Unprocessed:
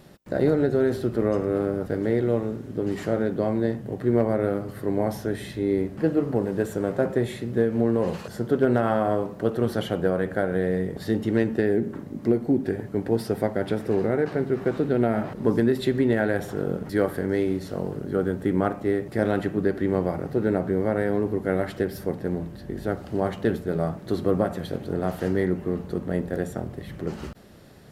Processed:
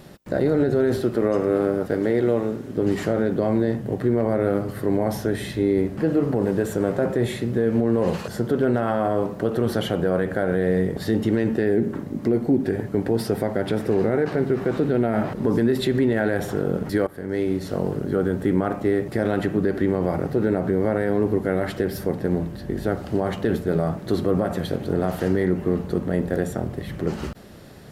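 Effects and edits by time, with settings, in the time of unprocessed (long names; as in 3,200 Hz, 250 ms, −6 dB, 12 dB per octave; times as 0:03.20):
0:01.01–0:02.78: low-shelf EQ 120 Hz −11.5 dB
0:17.07–0:17.77: fade in, from −19.5 dB
whole clip: brickwall limiter −16.5 dBFS; level +5.5 dB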